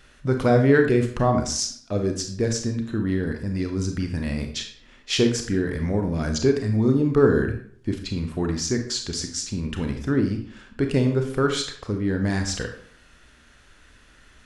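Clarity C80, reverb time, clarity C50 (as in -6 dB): 11.5 dB, 0.55 s, 7.5 dB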